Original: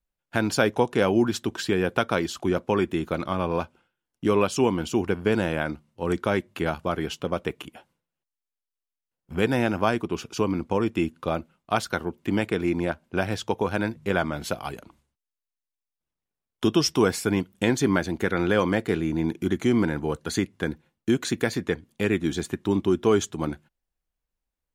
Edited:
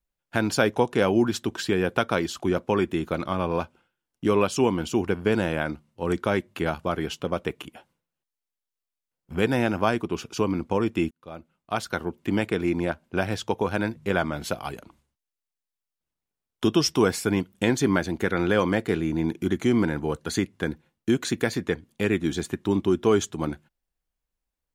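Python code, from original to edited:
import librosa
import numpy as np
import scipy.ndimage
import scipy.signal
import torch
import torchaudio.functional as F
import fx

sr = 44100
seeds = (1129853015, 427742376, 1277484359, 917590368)

y = fx.edit(x, sr, fx.fade_in_span(start_s=11.11, length_s=0.96), tone=tone)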